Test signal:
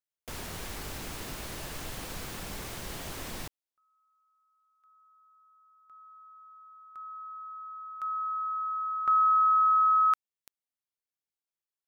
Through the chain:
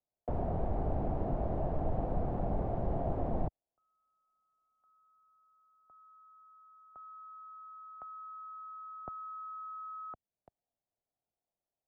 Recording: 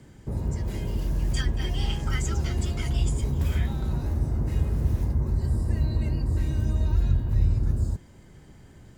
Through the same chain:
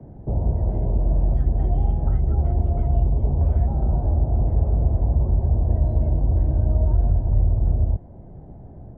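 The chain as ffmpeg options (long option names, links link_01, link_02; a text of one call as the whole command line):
ffmpeg -i in.wav -filter_complex "[0:a]acrossover=split=87|410[link_01][link_02][link_03];[link_01]acompressor=threshold=-26dB:ratio=4[link_04];[link_02]acompressor=threshold=-37dB:ratio=4[link_05];[link_03]acompressor=threshold=-40dB:ratio=4[link_06];[link_04][link_05][link_06]amix=inputs=3:normalize=0,lowpass=frequency=700:width_type=q:width=4.5,lowshelf=frequency=320:gain=10" out.wav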